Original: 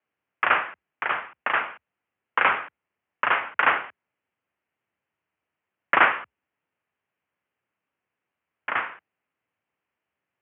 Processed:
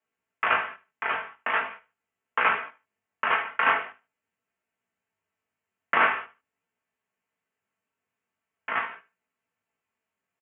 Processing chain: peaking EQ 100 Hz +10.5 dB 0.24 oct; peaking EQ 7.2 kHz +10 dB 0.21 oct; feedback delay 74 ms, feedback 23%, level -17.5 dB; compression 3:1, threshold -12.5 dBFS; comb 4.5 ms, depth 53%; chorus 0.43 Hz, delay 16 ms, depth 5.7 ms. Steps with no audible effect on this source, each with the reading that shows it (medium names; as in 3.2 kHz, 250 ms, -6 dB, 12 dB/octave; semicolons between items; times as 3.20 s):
peaking EQ 7.2 kHz: input has nothing above 3.4 kHz